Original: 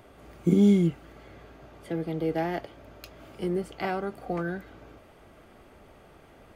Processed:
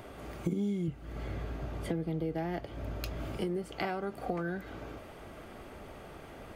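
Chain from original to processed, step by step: 0.88–3.37 low shelf 180 Hz +12 dB; compressor 6:1, threshold -37 dBFS, peak gain reduction 19.5 dB; gain +5.5 dB

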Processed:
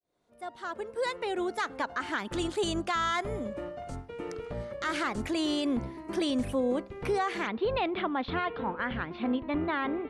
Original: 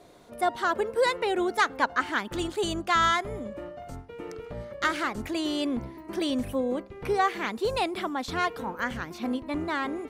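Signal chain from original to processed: opening faded in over 2.71 s; steep low-pass 11000 Hz 36 dB/oct, from 7.46 s 3600 Hz; limiter -22 dBFS, peak gain reduction 11 dB; gain +1 dB

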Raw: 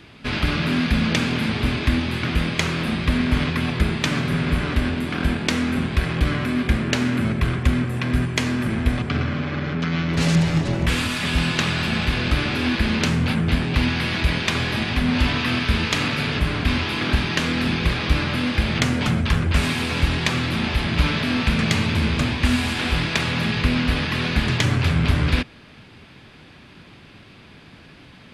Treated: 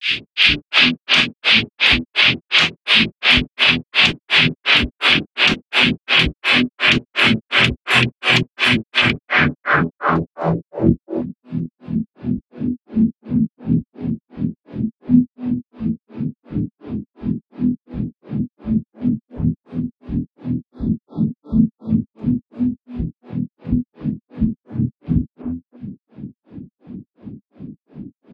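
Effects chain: RIAA curve recording; spectral delete 20.59–21.9, 1400–3300 Hz; high shelf 2700 Hz +6 dB; de-hum 84.35 Hz, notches 39; compressor 12:1, threshold -28 dBFS, peak gain reduction 20.5 dB; wavefolder -21 dBFS; grains 0.207 s, grains 2.8/s, spray 18 ms, pitch spread up and down by 0 st; low-pass sweep 2900 Hz -> 230 Hz, 8.98–11.04; three bands offset in time highs, lows, mids 60/350 ms, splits 410/1600 Hz; maximiser +25 dB; gain -1 dB

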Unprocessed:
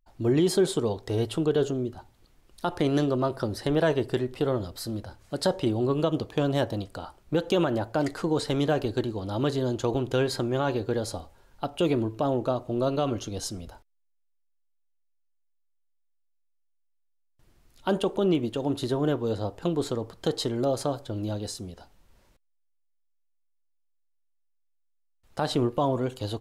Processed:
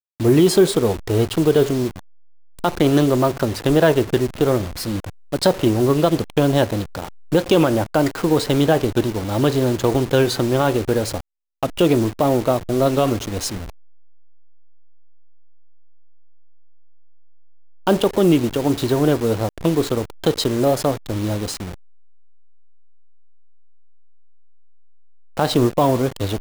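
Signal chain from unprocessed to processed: level-crossing sampler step -35 dBFS; record warp 45 rpm, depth 100 cents; gain +9 dB

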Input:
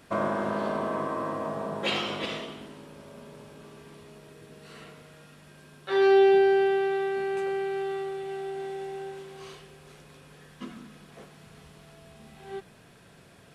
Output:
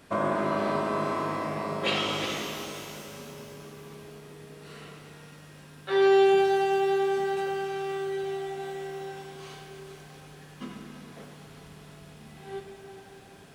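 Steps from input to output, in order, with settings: shimmer reverb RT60 3 s, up +12 st, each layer -8 dB, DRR 3.5 dB

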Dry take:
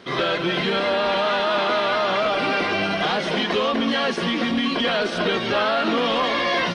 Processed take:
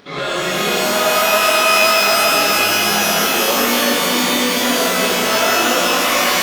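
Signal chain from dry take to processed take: upward compressor, threshold -43 dBFS; varispeed +5%; shimmer reverb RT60 2.9 s, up +12 st, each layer -2 dB, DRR -6 dB; gain -4 dB

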